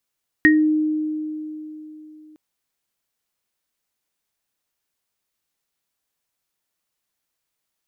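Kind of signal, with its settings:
inharmonic partials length 1.91 s, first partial 308 Hz, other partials 1,870 Hz, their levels 4 dB, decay 3.44 s, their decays 0.22 s, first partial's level −11 dB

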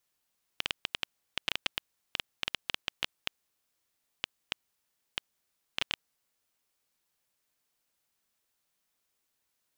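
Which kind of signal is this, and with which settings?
Geiger counter clicks 6.1 per second −11 dBFS 5.46 s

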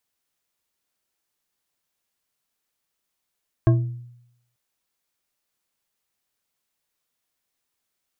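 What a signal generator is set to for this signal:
struck glass bar, lowest mode 121 Hz, decay 0.80 s, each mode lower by 6 dB, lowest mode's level −11 dB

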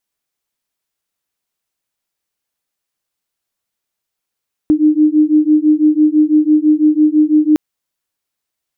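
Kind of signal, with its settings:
two tones that beat 302 Hz, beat 6 Hz, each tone −11 dBFS 2.86 s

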